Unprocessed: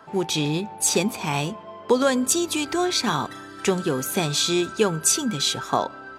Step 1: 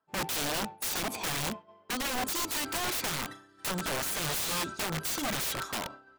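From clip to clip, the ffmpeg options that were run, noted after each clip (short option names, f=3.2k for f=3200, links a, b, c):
-af "agate=range=-33dB:threshold=-27dB:ratio=3:detection=peak,acompressor=threshold=-25dB:ratio=12,aeval=exprs='(mod(22.4*val(0)+1,2)-1)/22.4':c=same"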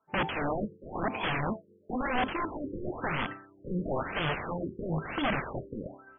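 -af "afftfilt=real='re*lt(b*sr/1024,520*pow(3500/520,0.5+0.5*sin(2*PI*1*pts/sr)))':imag='im*lt(b*sr/1024,520*pow(3500/520,0.5+0.5*sin(2*PI*1*pts/sr)))':win_size=1024:overlap=0.75,volume=4.5dB"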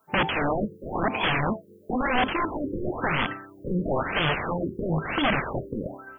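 -filter_complex "[0:a]asplit=2[a][b];[b]acompressor=threshold=-39dB:ratio=6,volume=1dB[c];[a][c]amix=inputs=2:normalize=0,aemphasis=mode=production:type=50kf,volume=3dB"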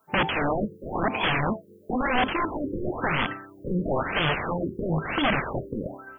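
-af anull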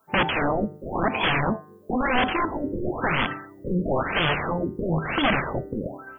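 -af "bandreject=f=150.9:t=h:w=4,bandreject=f=301.8:t=h:w=4,bandreject=f=452.7:t=h:w=4,bandreject=f=603.6:t=h:w=4,bandreject=f=754.5:t=h:w=4,bandreject=f=905.4:t=h:w=4,bandreject=f=1.0563k:t=h:w=4,bandreject=f=1.2072k:t=h:w=4,bandreject=f=1.3581k:t=h:w=4,bandreject=f=1.509k:t=h:w=4,bandreject=f=1.6599k:t=h:w=4,bandreject=f=1.8108k:t=h:w=4,bandreject=f=1.9617k:t=h:w=4,volume=2dB"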